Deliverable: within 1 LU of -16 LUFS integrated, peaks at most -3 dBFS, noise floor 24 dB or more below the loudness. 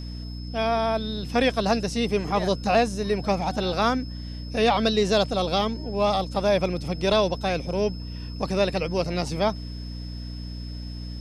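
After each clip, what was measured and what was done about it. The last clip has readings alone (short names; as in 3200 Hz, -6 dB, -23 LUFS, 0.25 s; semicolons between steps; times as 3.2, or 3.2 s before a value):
hum 60 Hz; harmonics up to 300 Hz; hum level -32 dBFS; steady tone 5200 Hz; tone level -44 dBFS; loudness -24.5 LUFS; peak -8.0 dBFS; loudness target -16.0 LUFS
-> notches 60/120/180/240/300 Hz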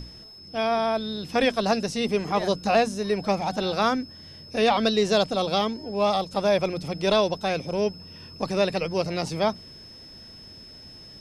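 hum none; steady tone 5200 Hz; tone level -44 dBFS
-> notch 5200 Hz, Q 30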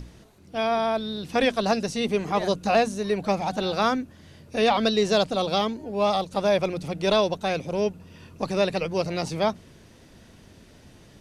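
steady tone none; loudness -25.0 LUFS; peak -8.5 dBFS; loudness target -16.0 LUFS
-> gain +9 dB; limiter -3 dBFS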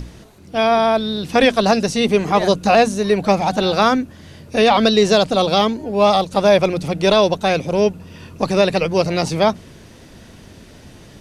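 loudness -16.5 LUFS; peak -3.0 dBFS; noise floor -43 dBFS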